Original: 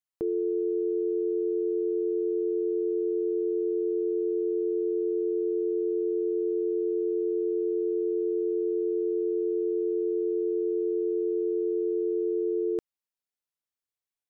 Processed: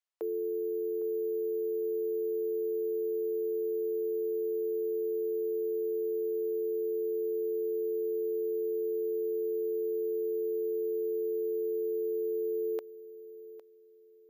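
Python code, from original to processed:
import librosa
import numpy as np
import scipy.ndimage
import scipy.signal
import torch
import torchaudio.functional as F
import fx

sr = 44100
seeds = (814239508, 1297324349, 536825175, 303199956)

p1 = scipy.signal.sosfilt(scipy.signal.butter(4, 450.0, 'highpass', fs=sr, output='sos'), x)
p2 = p1 + fx.echo_feedback(p1, sr, ms=807, feedback_pct=28, wet_db=-16.0, dry=0)
y = np.repeat(scipy.signal.resample_poly(p2, 1, 3), 3)[:len(p2)]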